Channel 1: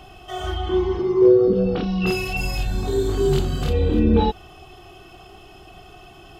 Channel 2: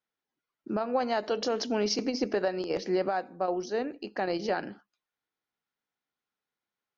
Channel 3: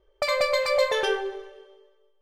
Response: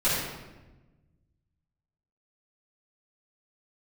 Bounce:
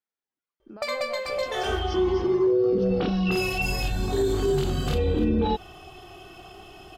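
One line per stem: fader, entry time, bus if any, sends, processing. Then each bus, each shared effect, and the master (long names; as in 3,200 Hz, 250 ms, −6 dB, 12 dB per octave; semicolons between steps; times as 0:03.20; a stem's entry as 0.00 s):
0.0 dB, 1.25 s, no send, no processing
−7.0 dB, 0.00 s, no send, downward compressor, threshold −33 dBFS, peak gain reduction 10 dB
+2.0 dB, 0.60 s, no send, automatic ducking −8 dB, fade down 1.15 s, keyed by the second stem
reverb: not used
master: low-shelf EQ 120 Hz −4.5 dB; brickwall limiter −15.5 dBFS, peak gain reduction 9.5 dB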